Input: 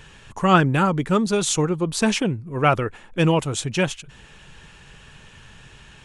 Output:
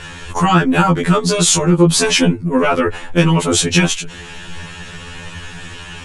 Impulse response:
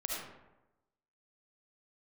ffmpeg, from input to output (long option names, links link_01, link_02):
-af "acompressor=threshold=-21dB:ratio=6,apsyclip=22.5dB,afftfilt=real='re*2*eq(mod(b,4),0)':imag='im*2*eq(mod(b,4),0)':win_size=2048:overlap=0.75,volume=-5dB"